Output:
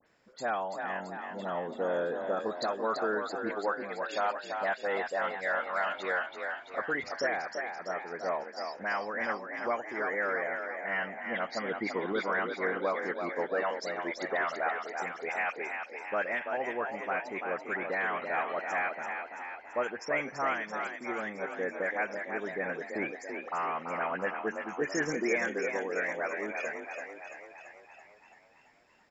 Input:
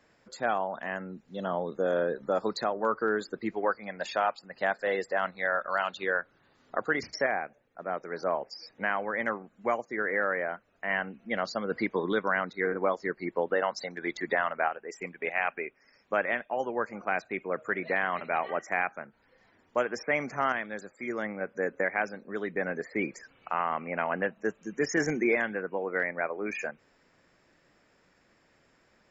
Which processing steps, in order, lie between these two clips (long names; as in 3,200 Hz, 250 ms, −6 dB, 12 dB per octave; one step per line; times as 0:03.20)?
low-shelf EQ 220 Hz −5 dB
all-pass dispersion highs, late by 67 ms, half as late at 2,400 Hz
echo with shifted repeats 335 ms, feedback 60%, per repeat +41 Hz, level −6 dB
level −3 dB